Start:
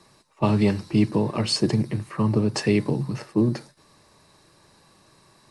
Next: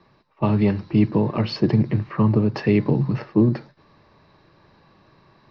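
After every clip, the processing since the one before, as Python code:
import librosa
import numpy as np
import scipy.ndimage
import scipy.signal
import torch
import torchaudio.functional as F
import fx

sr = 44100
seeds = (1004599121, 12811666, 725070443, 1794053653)

y = fx.rider(x, sr, range_db=10, speed_s=0.5)
y = scipy.signal.sosfilt(scipy.signal.butter(8, 5500.0, 'lowpass', fs=sr, output='sos'), y)
y = fx.bass_treble(y, sr, bass_db=2, treble_db=-14)
y = y * librosa.db_to_amplitude(2.0)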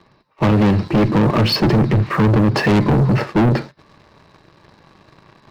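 y = fx.clip_asym(x, sr, top_db=-19.0, bottom_db=-11.5)
y = fx.leveller(y, sr, passes=2)
y = 10.0 ** (-17.5 / 20.0) * np.tanh(y / 10.0 ** (-17.5 / 20.0))
y = y * librosa.db_to_amplitude(7.0)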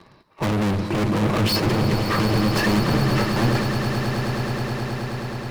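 y = fx.peak_eq(x, sr, hz=11000.0, db=6.0, octaves=0.79)
y = 10.0 ** (-23.0 / 20.0) * np.tanh(y / 10.0 ** (-23.0 / 20.0))
y = fx.echo_swell(y, sr, ms=106, loudest=8, wet_db=-12.5)
y = y * librosa.db_to_amplitude(2.5)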